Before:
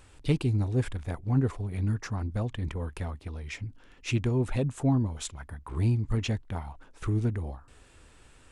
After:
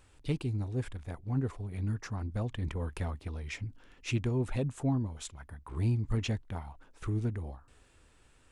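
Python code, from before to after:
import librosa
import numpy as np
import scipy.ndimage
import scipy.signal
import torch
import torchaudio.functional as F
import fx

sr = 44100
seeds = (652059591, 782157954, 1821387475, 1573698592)

y = fx.rider(x, sr, range_db=10, speed_s=2.0)
y = y * librosa.db_to_amplitude(-6.0)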